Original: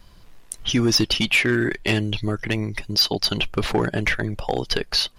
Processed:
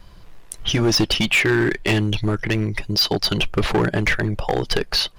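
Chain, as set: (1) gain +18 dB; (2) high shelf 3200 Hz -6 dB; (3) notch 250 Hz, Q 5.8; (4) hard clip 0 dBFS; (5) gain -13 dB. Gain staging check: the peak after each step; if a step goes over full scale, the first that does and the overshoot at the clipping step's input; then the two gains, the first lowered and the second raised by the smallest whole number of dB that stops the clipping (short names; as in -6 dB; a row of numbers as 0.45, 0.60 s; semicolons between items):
+9.5, +7.0, +7.5, 0.0, -13.0 dBFS; step 1, 7.5 dB; step 1 +10 dB, step 5 -5 dB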